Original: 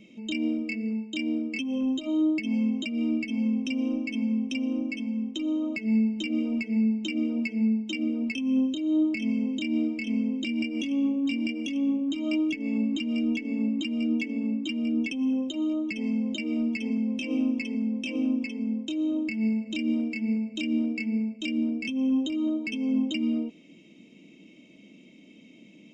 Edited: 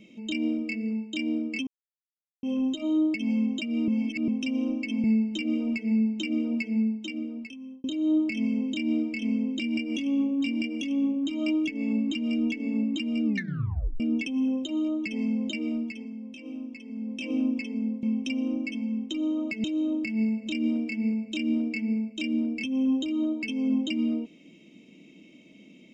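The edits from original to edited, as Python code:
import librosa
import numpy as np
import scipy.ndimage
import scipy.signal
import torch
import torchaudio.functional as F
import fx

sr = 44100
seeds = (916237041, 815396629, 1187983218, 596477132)

y = fx.edit(x, sr, fx.insert_silence(at_s=1.67, length_s=0.76),
    fx.reverse_span(start_s=3.12, length_s=0.4),
    fx.move(start_s=4.28, length_s=1.61, to_s=18.88),
    fx.fade_out_span(start_s=7.52, length_s=1.17),
    fx.tape_stop(start_s=14.1, length_s=0.75),
    fx.fade_down_up(start_s=16.43, length_s=1.78, db=-11.5, fade_s=0.49), tone=tone)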